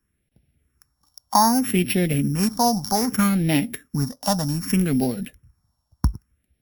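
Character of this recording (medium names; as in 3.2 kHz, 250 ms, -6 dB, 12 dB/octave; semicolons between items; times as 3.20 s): a buzz of ramps at a fixed pitch in blocks of 8 samples; phasing stages 4, 0.64 Hz, lowest notch 380–1100 Hz; AAC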